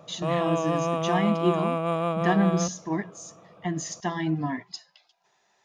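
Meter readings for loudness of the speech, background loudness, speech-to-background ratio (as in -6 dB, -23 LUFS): -28.5 LUFS, -27.5 LUFS, -1.0 dB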